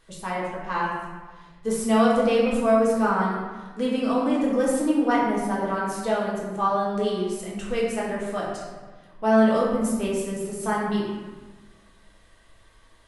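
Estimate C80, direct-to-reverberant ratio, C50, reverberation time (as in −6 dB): 3.0 dB, −6.5 dB, 0.5 dB, 1.4 s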